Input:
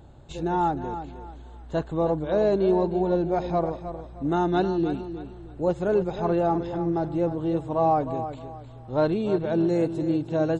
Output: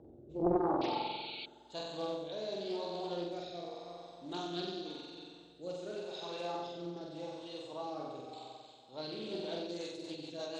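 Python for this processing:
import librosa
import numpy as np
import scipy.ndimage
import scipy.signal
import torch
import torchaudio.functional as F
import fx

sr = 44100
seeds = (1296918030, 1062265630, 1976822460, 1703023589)

p1 = fx.peak_eq(x, sr, hz=1800.0, db=-12.0, octaves=1.8)
p2 = fx.wow_flutter(p1, sr, seeds[0], rate_hz=2.1, depth_cents=26.0)
p3 = fx.filter_sweep_bandpass(p2, sr, from_hz=390.0, to_hz=4000.0, start_s=0.61, end_s=1.57, q=1.8)
p4 = p3 + fx.room_flutter(p3, sr, wall_m=7.9, rt60_s=1.3, dry=0)
p5 = fx.spec_paint(p4, sr, seeds[1], shape='noise', start_s=0.81, length_s=0.65, low_hz=2200.0, high_hz=4500.0, level_db=-46.0)
p6 = fx.rotary_switch(p5, sr, hz=0.9, then_hz=6.3, switch_at_s=9.31)
p7 = fx.rider(p6, sr, range_db=4, speed_s=0.5)
p8 = fx.doppler_dist(p7, sr, depth_ms=0.62)
y = p8 * 10.0 ** (4.0 / 20.0)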